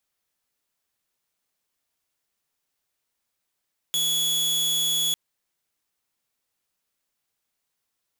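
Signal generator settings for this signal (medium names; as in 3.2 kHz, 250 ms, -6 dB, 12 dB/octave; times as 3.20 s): tone saw 3.38 kHz -19 dBFS 1.20 s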